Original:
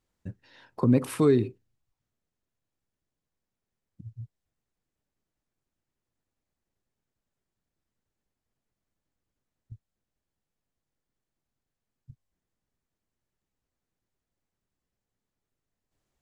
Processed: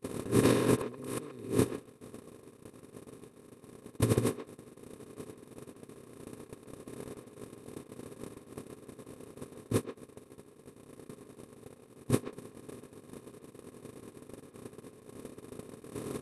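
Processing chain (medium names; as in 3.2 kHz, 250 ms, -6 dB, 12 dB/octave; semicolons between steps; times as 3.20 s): spectral levelling over time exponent 0.2; treble shelf 3.2 kHz +7 dB; gate -24 dBFS, range -55 dB; compressor with a negative ratio -29 dBFS, ratio -0.5; speakerphone echo 130 ms, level -10 dB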